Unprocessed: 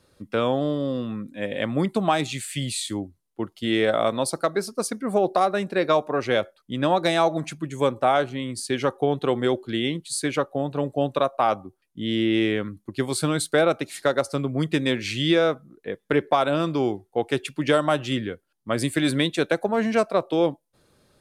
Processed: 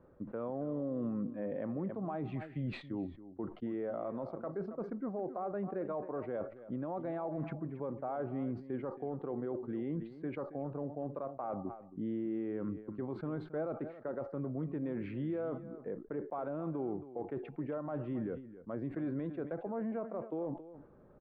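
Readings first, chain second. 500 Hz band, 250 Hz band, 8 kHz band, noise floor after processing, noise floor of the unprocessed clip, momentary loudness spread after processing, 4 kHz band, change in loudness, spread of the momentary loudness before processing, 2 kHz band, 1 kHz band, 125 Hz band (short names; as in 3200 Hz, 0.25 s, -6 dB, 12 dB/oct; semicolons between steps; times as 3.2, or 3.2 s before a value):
-15.5 dB, -12.0 dB, under -40 dB, -54 dBFS, -70 dBFS, 4 LU, under -35 dB, -15.5 dB, 9 LU, -25.0 dB, -19.0 dB, -12.0 dB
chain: block floating point 7-bit; Bessel low-pass 900 Hz, order 4; bell 95 Hz -7.5 dB 0.73 oct; reverse; compressor 8:1, threshold -33 dBFS, peak gain reduction 16 dB; reverse; limiter -33 dBFS, peak gain reduction 10 dB; on a send: echo 0.273 s -14.5 dB; on the sum: sustainer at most 130 dB/s; gain +3 dB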